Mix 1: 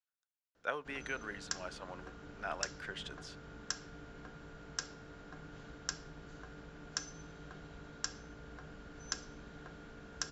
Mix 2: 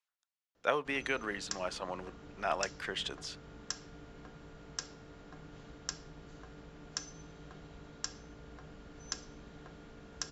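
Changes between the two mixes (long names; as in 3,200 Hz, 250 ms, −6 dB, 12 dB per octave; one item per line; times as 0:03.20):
speech +8.5 dB
master: add parametric band 1,500 Hz −8 dB 0.23 octaves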